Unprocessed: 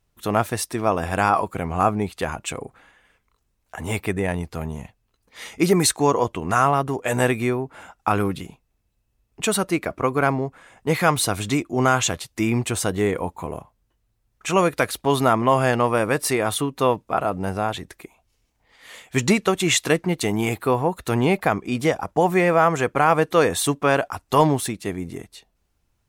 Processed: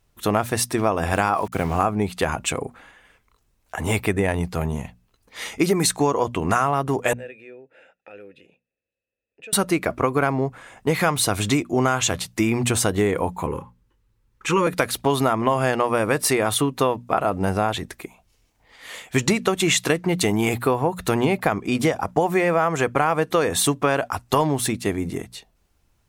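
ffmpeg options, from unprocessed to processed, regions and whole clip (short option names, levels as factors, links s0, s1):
-filter_complex "[0:a]asettb=1/sr,asplit=3[s0][s1][s2];[s0]atrim=end=1.134[s3];[s1]atrim=start=1.13:end=1.85,asetpts=PTS-STARTPTS,afade=t=in:d=0.004:c=qsin,afade=t=out:st=0.716:d=0.004:c=qsin,highpass=55,aeval=exprs='val(0)*gte(abs(val(0)),0.01)':c=same[s4];[s2]atrim=start=1.846[s5];[s3][s4]acrossfade=d=0.004:c1=hsin:c2=qsin[s6];[s6][s5]acrossfade=d=0.004:c1=qsin:c2=hsin,asettb=1/sr,asplit=3[s7][s8][s9];[s7]atrim=end=7.134[s10];[s8]atrim=start=7.13:end=9.53,asetpts=PTS-STARTPTS,afade=t=in:d=0.004:c=qsin,afade=t=out:st=2.396:d=0.004:c=qsin,aecho=1:1:0.8:0.35,atrim=end_sample=105840,acompressor=threshold=0.0141:ratio=2:attack=3.2:release=140:knee=1:detection=peak,asplit=3[s11][s12][s13];[s11]bandpass=f=530:t=q:w=8,volume=1[s14];[s12]bandpass=f=1840:t=q:w=8,volume=0.501[s15];[s13]bandpass=f=2480:t=q:w=8,volume=0.355[s16];[s14][s15][s16]amix=inputs=3:normalize=0[s17];[s9]atrim=start=9.526[s18];[s10][s17]acrossfade=d=0.004:c1=hsin:c2=qsin[s19];[s19][s18]acrossfade=d=0.004:c1=qsin:c2=hsin,asettb=1/sr,asplit=3[s20][s21][s22];[s20]atrim=end=13.464[s23];[s21]atrim=start=13.46:end=14.67,asetpts=PTS-STARTPTS,afade=t=in:d=0.004:c=qsin,afade=t=out:st=1.206:d=0.004:c=qsin,asuperstop=centerf=670:order=20:qfactor=2.8,highshelf=f=3800:g=-7.5[s24];[s22]atrim=start=14.666[s25];[s23][s24]acrossfade=d=0.004:c1=hsin:c2=qsin[s26];[s26][s25]acrossfade=d=0.004:c1=qsin:c2=hsin,bandreject=f=60:t=h:w=6,bandreject=f=120:t=h:w=6,bandreject=f=180:t=h:w=6,bandreject=f=240:t=h:w=6,acompressor=threshold=0.0891:ratio=6,volume=1.78"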